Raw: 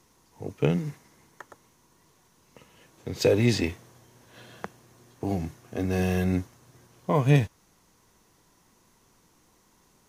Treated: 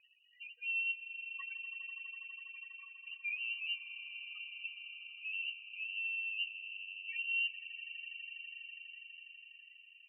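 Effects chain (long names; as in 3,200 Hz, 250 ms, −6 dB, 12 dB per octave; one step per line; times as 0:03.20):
reversed playback
downward compressor 6 to 1, threshold −39 dBFS, peak gain reduction 22.5 dB
reversed playback
spectral peaks only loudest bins 2
frequency shifter +22 Hz
echo that builds up and dies away 82 ms, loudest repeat 8, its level −17 dB
voice inversion scrambler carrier 2,900 Hz
level +5.5 dB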